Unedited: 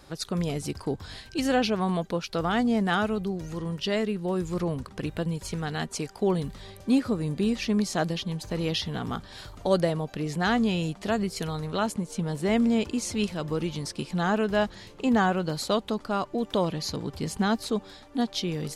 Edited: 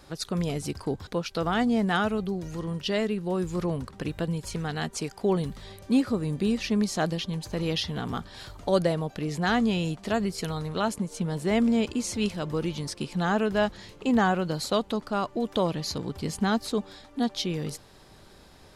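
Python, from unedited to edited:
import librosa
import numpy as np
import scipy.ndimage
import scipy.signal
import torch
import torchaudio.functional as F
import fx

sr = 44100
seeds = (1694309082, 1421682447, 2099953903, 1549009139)

y = fx.edit(x, sr, fx.cut(start_s=1.07, length_s=0.98), tone=tone)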